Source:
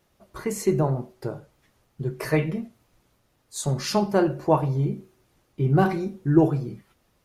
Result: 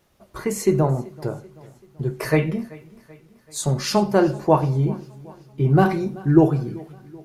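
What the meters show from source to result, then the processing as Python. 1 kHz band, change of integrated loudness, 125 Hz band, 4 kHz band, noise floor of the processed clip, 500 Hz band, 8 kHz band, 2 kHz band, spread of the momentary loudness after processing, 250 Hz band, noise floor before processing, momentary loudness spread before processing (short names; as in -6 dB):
+3.5 dB, +3.5 dB, +3.5 dB, +3.5 dB, -57 dBFS, +3.5 dB, +3.5 dB, +3.5 dB, 16 LU, +3.5 dB, -68 dBFS, 15 LU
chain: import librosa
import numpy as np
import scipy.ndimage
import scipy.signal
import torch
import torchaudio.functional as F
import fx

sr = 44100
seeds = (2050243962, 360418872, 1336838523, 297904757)

y = fx.echo_feedback(x, sr, ms=384, feedback_pct=52, wet_db=-22)
y = y * 10.0 ** (3.5 / 20.0)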